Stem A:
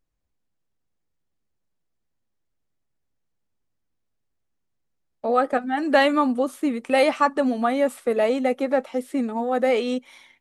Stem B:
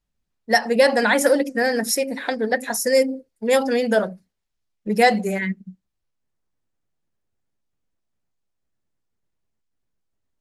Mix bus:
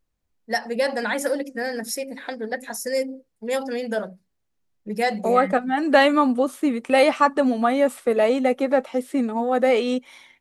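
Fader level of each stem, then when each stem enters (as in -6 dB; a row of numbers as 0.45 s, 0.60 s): +2.0 dB, -7.0 dB; 0.00 s, 0.00 s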